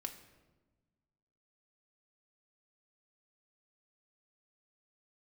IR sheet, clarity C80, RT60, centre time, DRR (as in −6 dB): 12.5 dB, 1.2 s, 14 ms, 4.0 dB